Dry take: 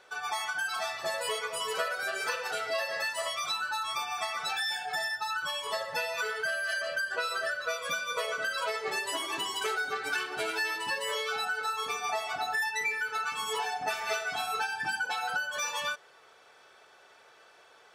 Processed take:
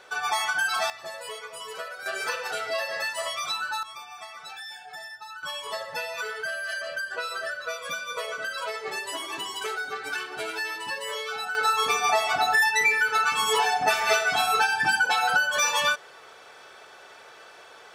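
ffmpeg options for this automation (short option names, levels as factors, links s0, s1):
-af "asetnsamples=n=441:p=0,asendcmd='0.9 volume volume -5dB;2.06 volume volume 2.5dB;3.83 volume volume -8dB;5.43 volume volume 0dB;11.55 volume volume 9.5dB',volume=2.24"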